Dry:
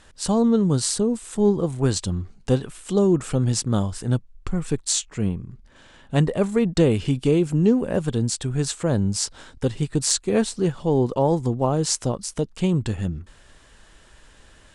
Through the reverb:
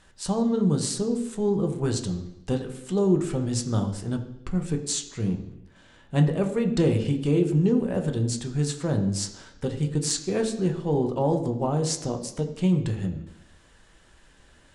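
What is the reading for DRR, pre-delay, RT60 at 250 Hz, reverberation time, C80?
3.5 dB, 4 ms, 0.90 s, 0.85 s, 12.0 dB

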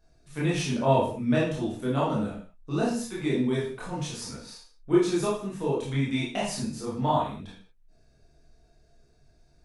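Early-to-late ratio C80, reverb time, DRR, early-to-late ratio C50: 7.5 dB, non-exponential decay, −7.0 dB, 2.5 dB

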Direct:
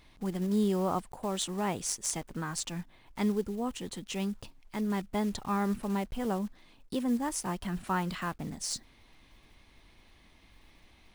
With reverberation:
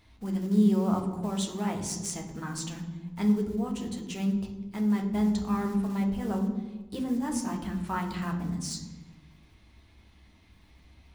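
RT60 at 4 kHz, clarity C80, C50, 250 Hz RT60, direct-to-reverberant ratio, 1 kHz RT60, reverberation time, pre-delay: 0.80 s, 10.5 dB, 8.0 dB, 1.4 s, 2.0 dB, 1.1 s, 1.2 s, 3 ms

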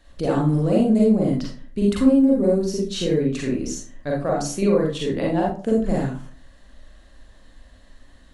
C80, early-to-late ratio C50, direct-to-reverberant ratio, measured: 8.5 dB, 2.5 dB, −3.0 dB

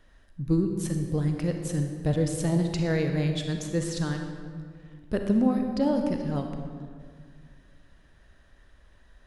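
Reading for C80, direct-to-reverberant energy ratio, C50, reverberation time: 6.5 dB, 4.0 dB, 5.0 dB, 2.0 s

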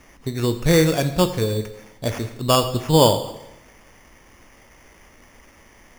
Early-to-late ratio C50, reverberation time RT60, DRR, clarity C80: 11.0 dB, 0.90 s, 8.5 dB, 13.0 dB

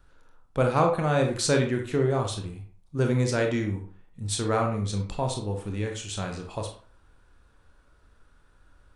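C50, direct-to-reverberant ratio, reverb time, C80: 6.5 dB, 2.5 dB, 0.45 s, 11.5 dB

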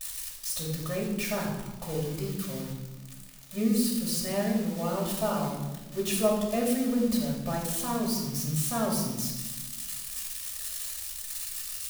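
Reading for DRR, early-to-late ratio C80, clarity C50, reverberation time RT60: −3.5 dB, 6.0 dB, 3.5 dB, 1.2 s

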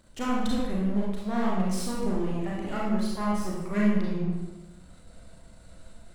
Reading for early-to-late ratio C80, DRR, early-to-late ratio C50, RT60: 2.5 dB, −5.0 dB, −1.0 dB, 1.0 s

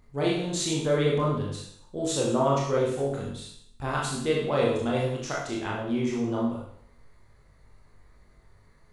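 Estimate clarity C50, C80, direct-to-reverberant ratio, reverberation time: 2.0 dB, 6.0 dB, −4.5 dB, 0.65 s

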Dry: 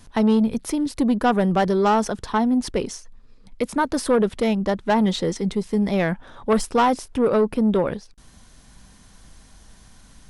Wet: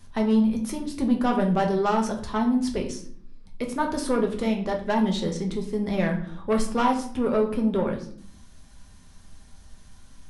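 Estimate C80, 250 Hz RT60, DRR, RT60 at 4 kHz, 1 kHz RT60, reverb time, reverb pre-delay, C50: 13.0 dB, 0.95 s, 1.5 dB, 0.40 s, 0.50 s, 0.60 s, 5 ms, 9.0 dB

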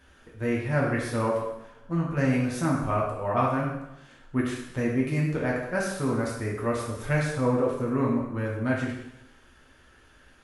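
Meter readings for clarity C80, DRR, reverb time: 5.5 dB, −4.0 dB, 0.85 s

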